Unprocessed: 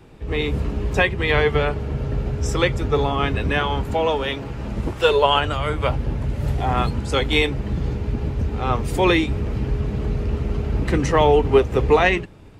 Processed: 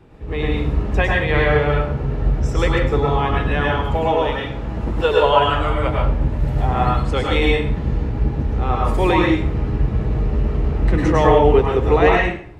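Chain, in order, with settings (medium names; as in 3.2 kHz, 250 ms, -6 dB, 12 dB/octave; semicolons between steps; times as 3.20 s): treble shelf 3.4 kHz -10 dB; plate-style reverb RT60 0.52 s, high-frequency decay 0.85×, pre-delay 90 ms, DRR -2.5 dB; trim -1 dB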